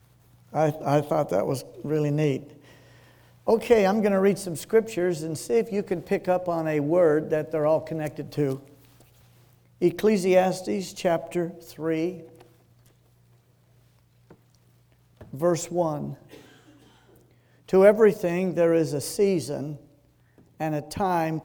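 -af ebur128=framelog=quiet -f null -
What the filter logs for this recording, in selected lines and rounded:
Integrated loudness:
  I:         -24.5 LUFS
  Threshold: -36.2 LUFS
Loudness range:
  LRA:         8.6 LU
  Threshold: -46.1 LUFS
  LRA low:   -31.9 LUFS
  LRA high:  -23.3 LUFS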